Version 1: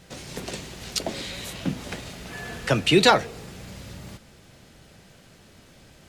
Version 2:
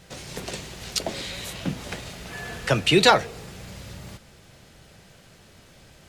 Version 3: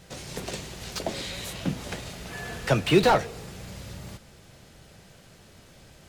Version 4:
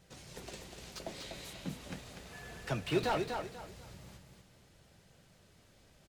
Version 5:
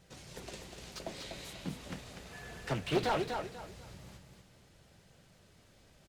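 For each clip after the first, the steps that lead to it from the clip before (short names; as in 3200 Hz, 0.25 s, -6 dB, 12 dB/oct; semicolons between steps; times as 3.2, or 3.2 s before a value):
bell 260 Hz -4 dB 0.85 oct; gain +1 dB
bell 2300 Hz -2 dB 2.3 oct; slew limiter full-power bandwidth 160 Hz
flange 0.39 Hz, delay 0.1 ms, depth 7 ms, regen -67%; on a send: feedback echo 0.245 s, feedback 28%, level -5.5 dB; on the sum: gain -8.5 dB
Doppler distortion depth 0.52 ms; gain +1 dB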